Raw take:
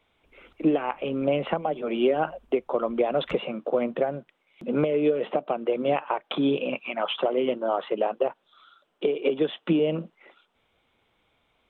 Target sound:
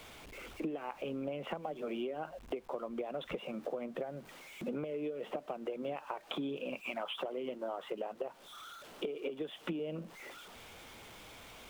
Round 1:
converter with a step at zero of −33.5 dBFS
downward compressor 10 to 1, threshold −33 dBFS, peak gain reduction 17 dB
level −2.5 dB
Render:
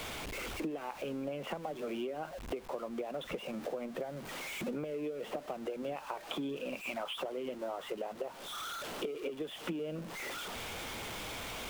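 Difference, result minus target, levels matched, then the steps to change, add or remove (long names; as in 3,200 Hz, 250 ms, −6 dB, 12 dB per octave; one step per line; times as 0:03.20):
converter with a step at zero: distortion +11 dB
change: converter with a step at zero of −45 dBFS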